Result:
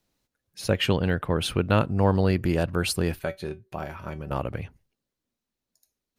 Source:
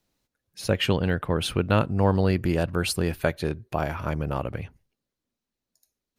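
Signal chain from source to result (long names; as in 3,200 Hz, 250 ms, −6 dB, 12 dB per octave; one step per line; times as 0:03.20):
0:03.19–0:04.31: tuned comb filter 190 Hz, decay 0.16 s, harmonics all, mix 70%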